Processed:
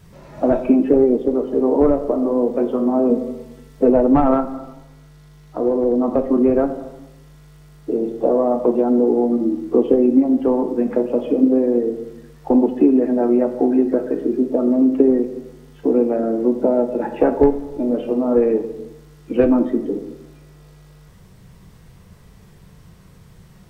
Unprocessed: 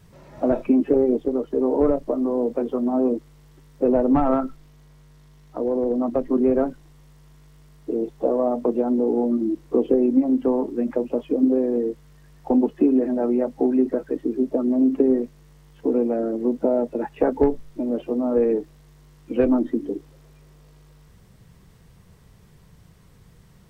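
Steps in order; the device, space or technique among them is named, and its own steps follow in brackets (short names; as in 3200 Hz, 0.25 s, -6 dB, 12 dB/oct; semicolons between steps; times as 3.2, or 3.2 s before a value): compressed reverb return (on a send at -3 dB: reverb RT60 0.85 s, pre-delay 10 ms + compressor, threshold -23 dBFS, peak gain reduction 11.5 dB); 3.09–3.9 on the sum: comb 4.5 ms, depth 66%; gain +4 dB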